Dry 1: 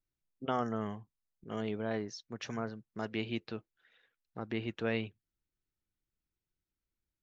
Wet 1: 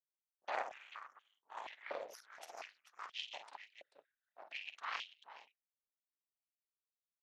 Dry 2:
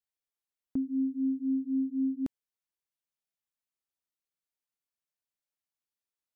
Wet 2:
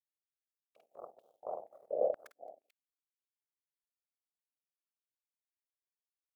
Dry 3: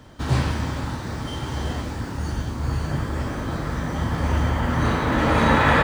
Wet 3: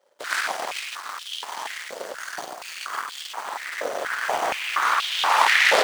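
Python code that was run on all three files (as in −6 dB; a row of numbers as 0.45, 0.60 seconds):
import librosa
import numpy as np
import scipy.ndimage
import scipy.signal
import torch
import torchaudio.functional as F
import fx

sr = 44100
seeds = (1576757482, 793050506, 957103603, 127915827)

y = fx.high_shelf(x, sr, hz=5400.0, db=11.0)
y = fx.whisperise(y, sr, seeds[0])
y = fx.echo_multitap(y, sr, ms=(50, 218, 439), db=(-5.0, -19.0, -7.0))
y = fx.cheby_harmonics(y, sr, harmonics=(3, 8), levels_db=(-9, -17), full_scale_db=-2.5)
y = fx.filter_held_highpass(y, sr, hz=4.2, low_hz=550.0, high_hz=3200.0)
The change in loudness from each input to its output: −9.0, −6.5, −0.5 LU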